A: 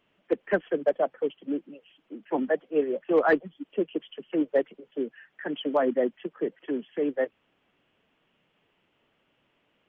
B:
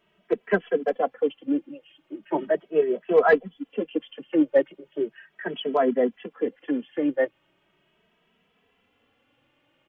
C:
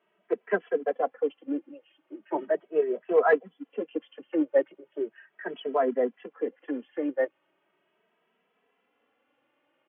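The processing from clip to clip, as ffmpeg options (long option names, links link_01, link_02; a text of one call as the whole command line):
ffmpeg -i in.wav -filter_complex "[0:a]asplit=2[link_01][link_02];[link_02]adelay=2.7,afreqshift=0.38[link_03];[link_01][link_03]amix=inputs=2:normalize=1,volume=6dB" out.wav
ffmpeg -i in.wav -af "highpass=310,lowpass=2100,volume=-2.5dB" out.wav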